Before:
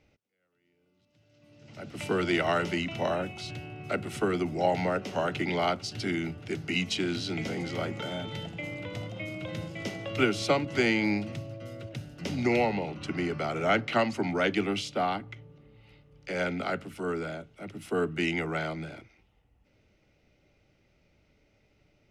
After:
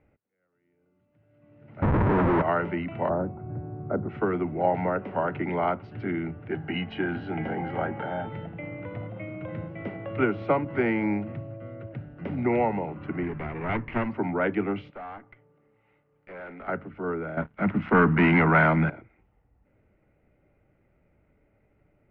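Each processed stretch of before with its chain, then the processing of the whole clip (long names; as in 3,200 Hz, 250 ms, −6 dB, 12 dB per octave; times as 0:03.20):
0:01.82–0:02.42: spectral tilt −4 dB per octave + comparator with hysteresis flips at −37.5 dBFS
0:03.09–0:04.09: low-pass filter 1,400 Hz 24 dB per octave + tilt shelving filter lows +5 dB, about 770 Hz
0:06.50–0:08.29: double-tracking delay 13 ms −12 dB + hollow resonant body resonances 800/1,600/2,900 Hz, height 13 dB, ringing for 35 ms
0:13.23–0:14.10: lower of the sound and its delayed copy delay 0.38 ms + parametric band 570 Hz −7.5 dB 0.8 octaves
0:14.90–0:16.68: high-pass filter 620 Hz 6 dB per octave + tube saturation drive 38 dB, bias 0.55
0:17.37–0:18.90: leveller curve on the samples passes 3 + drawn EQ curve 140 Hz 0 dB, 200 Hz +8 dB, 370 Hz −5 dB, 1,300 Hz +5 dB
whole clip: low-pass filter 1,900 Hz 24 dB per octave; dynamic equaliser 960 Hz, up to +6 dB, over −51 dBFS, Q 6.6; level +1.5 dB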